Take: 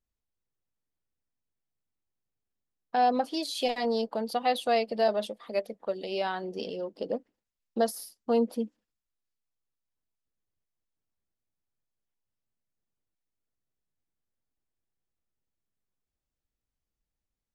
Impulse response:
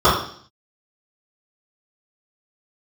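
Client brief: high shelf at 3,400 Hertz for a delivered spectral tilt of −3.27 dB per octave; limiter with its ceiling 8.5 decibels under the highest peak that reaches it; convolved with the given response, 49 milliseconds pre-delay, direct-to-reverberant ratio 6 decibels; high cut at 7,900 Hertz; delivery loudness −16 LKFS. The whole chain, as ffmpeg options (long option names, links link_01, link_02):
-filter_complex "[0:a]lowpass=7900,highshelf=frequency=3400:gain=-6.5,alimiter=limit=-23.5dB:level=0:latency=1,asplit=2[link_01][link_02];[1:a]atrim=start_sample=2205,adelay=49[link_03];[link_02][link_03]afir=irnorm=-1:irlink=0,volume=-32.5dB[link_04];[link_01][link_04]amix=inputs=2:normalize=0,volume=17dB"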